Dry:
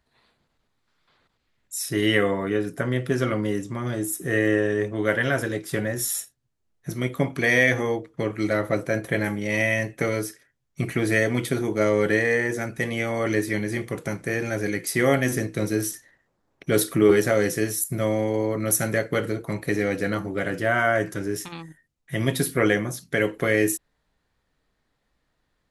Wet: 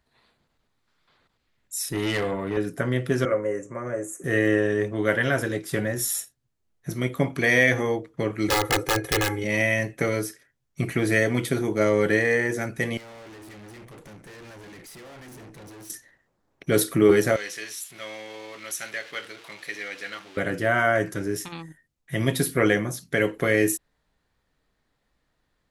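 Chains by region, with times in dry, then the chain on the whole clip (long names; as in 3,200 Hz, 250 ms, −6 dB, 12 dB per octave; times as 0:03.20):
0:01.89–0:02.57: high-pass filter 55 Hz + notch filter 5,500 Hz, Q 5 + tube saturation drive 21 dB, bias 0.5
0:03.25–0:04.24: Butterworth band-reject 4,200 Hz, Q 0.7 + loudspeaker in its box 190–8,400 Hz, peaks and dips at 210 Hz −10 dB, 310 Hz −7 dB, 540 Hz +9 dB, 810 Hz −5 dB, 3,300 Hz −6 dB, 6,400 Hz +9 dB
0:08.48–0:09.44: wrap-around overflow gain 16.5 dB + comb filter 2.4 ms, depth 84%
0:12.97–0:15.90: downward compressor, threshold −24 dBFS + high-shelf EQ 4,600 Hz −5 dB + tube saturation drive 43 dB, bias 0.7
0:17.36–0:20.37: converter with a step at zero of −33 dBFS + resonant band-pass 3,200 Hz, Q 1.1
whole clip: no processing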